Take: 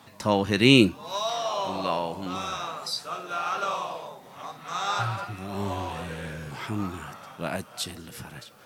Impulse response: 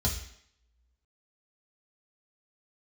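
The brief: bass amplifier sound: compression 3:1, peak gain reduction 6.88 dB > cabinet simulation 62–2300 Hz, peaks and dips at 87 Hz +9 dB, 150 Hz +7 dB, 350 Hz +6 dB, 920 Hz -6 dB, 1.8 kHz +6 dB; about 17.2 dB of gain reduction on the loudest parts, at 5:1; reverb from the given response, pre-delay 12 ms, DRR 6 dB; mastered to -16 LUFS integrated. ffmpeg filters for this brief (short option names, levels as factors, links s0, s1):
-filter_complex "[0:a]acompressor=threshold=0.0282:ratio=5,asplit=2[s0][s1];[1:a]atrim=start_sample=2205,adelay=12[s2];[s1][s2]afir=irnorm=-1:irlink=0,volume=0.237[s3];[s0][s3]amix=inputs=2:normalize=0,acompressor=threshold=0.0316:ratio=3,highpass=f=62:w=0.5412,highpass=f=62:w=1.3066,equalizer=f=87:t=q:w=4:g=9,equalizer=f=150:t=q:w=4:g=7,equalizer=f=350:t=q:w=4:g=6,equalizer=f=920:t=q:w=4:g=-6,equalizer=f=1800:t=q:w=4:g=6,lowpass=f=2300:w=0.5412,lowpass=f=2300:w=1.3066,volume=7.08"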